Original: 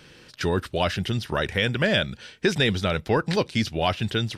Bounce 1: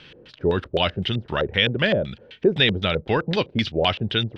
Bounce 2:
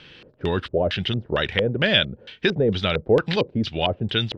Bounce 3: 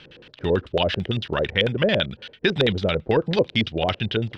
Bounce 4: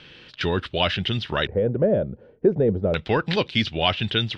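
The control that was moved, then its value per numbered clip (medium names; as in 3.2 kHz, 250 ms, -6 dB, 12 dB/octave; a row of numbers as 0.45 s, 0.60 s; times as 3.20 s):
LFO low-pass, rate: 3.9 Hz, 2.2 Hz, 9 Hz, 0.34 Hz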